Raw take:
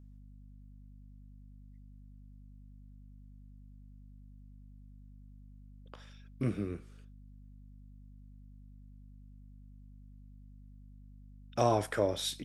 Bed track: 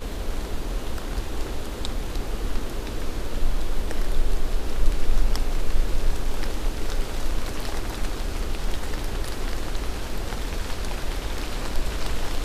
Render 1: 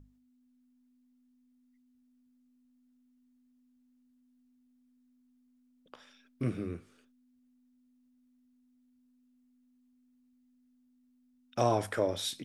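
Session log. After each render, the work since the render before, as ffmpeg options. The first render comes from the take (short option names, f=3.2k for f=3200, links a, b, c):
-af "bandreject=f=50:t=h:w=6,bandreject=f=100:t=h:w=6,bandreject=f=150:t=h:w=6,bandreject=f=200:t=h:w=6"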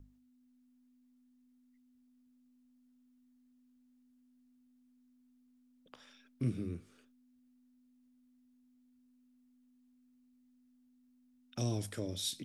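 -filter_complex "[0:a]acrossover=split=330|3000[a][b][c];[b]acompressor=threshold=-54dB:ratio=5[d];[a][d][c]amix=inputs=3:normalize=0"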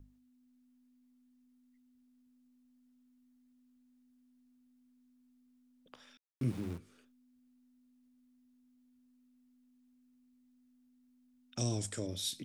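-filter_complex "[0:a]asettb=1/sr,asplit=3[a][b][c];[a]atrim=end=6.174[d];[b]atrim=start=6.17:end=6.78,asetpts=PTS-STARTPTS,afade=t=in:d=0.004:c=qsin,afade=t=out:st=0.606:d=0.004:c=qsin,aeval=exprs='val(0)*gte(abs(val(0)),0.00501)':c=same[e];[c]atrim=start=6.776[f];[d][e]acrossfade=d=0.004:c1=hsin:c2=qsin[g];[g][f]acrossfade=d=0.004:c1=qsin:c2=hsin,asettb=1/sr,asplit=3[h][i][j];[h]atrim=end=11.564[k];[i]atrim=start=11.56:end=12.07,asetpts=PTS-STARTPTS,afade=t=in:d=0.004:c=qsin,afade=t=out:st=0.506:d=0.004:c=qsin,lowpass=f=7.7k:t=q:w=4.3[l];[j]atrim=start=12.066[m];[k][l]acrossfade=d=0.004:c1=hsin:c2=qsin[n];[n][m]acrossfade=d=0.004:c1=qsin:c2=hsin"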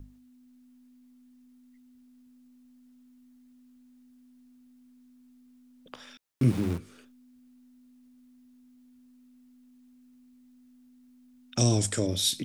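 -af "volume=11dB"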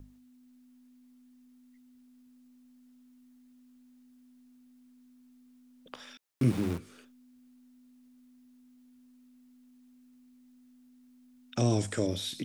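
-filter_complex "[0:a]acrossover=split=2700[a][b];[b]acompressor=threshold=-40dB:ratio=4:attack=1:release=60[c];[a][c]amix=inputs=2:normalize=0,lowshelf=f=170:g=-5.5"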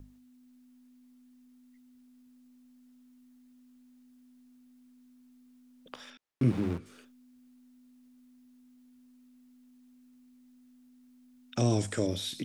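-filter_complex "[0:a]asettb=1/sr,asplit=3[a][b][c];[a]atrim=end=6.104[d];[b]atrim=start=6.1:end=6.86,asetpts=PTS-STARTPTS,afade=t=in:d=0.004:c=qsin,afade=t=out:st=0.756:d=0.004:c=qsin,lowpass=f=2.7k:p=1[e];[c]atrim=start=6.856[f];[d][e]acrossfade=d=0.004:c1=hsin:c2=qsin[g];[g][f]acrossfade=d=0.004:c1=qsin:c2=hsin"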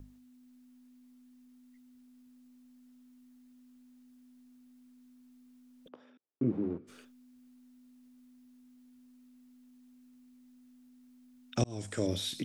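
-filter_complex "[0:a]asplit=3[a][b][c];[a]afade=t=out:st=5.87:d=0.02[d];[b]bandpass=f=350:t=q:w=1.2,afade=t=in:st=5.87:d=0.02,afade=t=out:st=6.87:d=0.02[e];[c]afade=t=in:st=6.87:d=0.02[f];[d][e][f]amix=inputs=3:normalize=0,asplit=2[g][h];[g]atrim=end=11.64,asetpts=PTS-STARTPTS,afade=t=out:st=11.636:d=0.004:c=hsin[i];[h]atrim=start=11.64,asetpts=PTS-STARTPTS,afade=t=in:d=0.49[j];[i][j]concat=n=2:v=0:a=1"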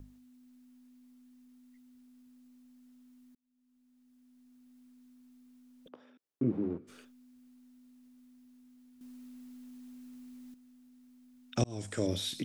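-filter_complex "[0:a]asplit=4[a][b][c][d];[a]atrim=end=3.35,asetpts=PTS-STARTPTS,afade=t=out:st=3.346:d=0.004:c=hsin[e];[b]atrim=start=3.35:end=9.012,asetpts=PTS-STARTPTS,afade=t=in:d=1.44[f];[c]atrim=start=9.008:end=10.542,asetpts=PTS-STARTPTS,volume=9.5dB[g];[d]atrim=start=10.538[h];[e][f]concat=n=2:v=0:a=1[i];[i][g]acrossfade=d=0.004:c1=hsin:c2=hsin[j];[j][h]acrossfade=d=0.004:c1=hsin:c2=hsin"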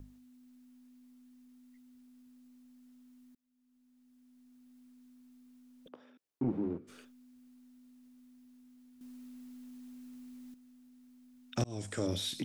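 -af "asoftclip=type=tanh:threshold=-24dB"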